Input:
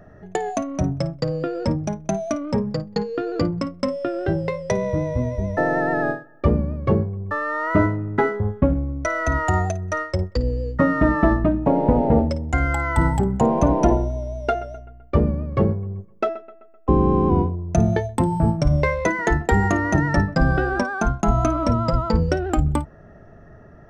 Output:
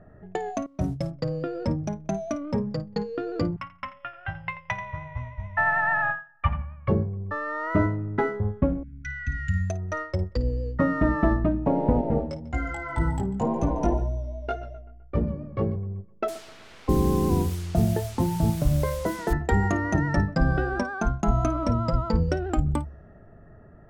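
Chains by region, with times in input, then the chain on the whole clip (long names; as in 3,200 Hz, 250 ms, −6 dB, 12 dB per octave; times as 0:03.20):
0:00.66–0:01.11: variable-slope delta modulation 64 kbit/s + noise gate −27 dBFS, range −19 dB
0:03.56–0:06.88: drawn EQ curve 120 Hz 0 dB, 430 Hz −30 dB, 810 Hz +8 dB, 2,900 Hz +13 dB, 4,300 Hz −5 dB + repeating echo 86 ms, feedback 17%, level −12 dB + expander for the loud parts, over −34 dBFS
0:08.83–0:09.70: linear-phase brick-wall band-stop 260–1,400 Hz + high-shelf EQ 3,800 Hz −6.5 dB
0:12.01–0:15.76: single-tap delay 145 ms −17 dB + chorus effect 1.9 Hz, delay 17.5 ms, depth 2.6 ms
0:16.28–0:19.33: moving average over 17 samples + bit-depth reduction 6 bits, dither triangular
whole clip: low-pass that shuts in the quiet parts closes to 2,000 Hz, open at −17.5 dBFS; low-shelf EQ 220 Hz +3.5 dB; hum removal 69.35 Hz, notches 2; level −6 dB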